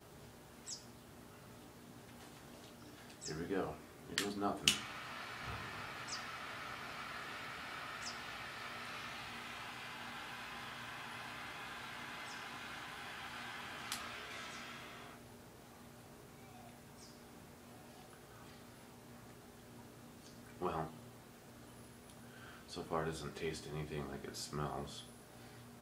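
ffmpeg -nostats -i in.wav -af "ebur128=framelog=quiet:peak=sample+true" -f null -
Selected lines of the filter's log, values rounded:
Integrated loudness:
  I:         -44.2 LUFS
  Threshold: -55.7 LUFS
Loudness range:
  LRA:        16.3 LU
  Threshold: -65.4 LUFS
  LRA low:   -56.4 LUFS
  LRA high:  -40.1 LUFS
Sample peak:
  Peak:       -9.7 dBFS
True peak:
  Peak:       -9.5 dBFS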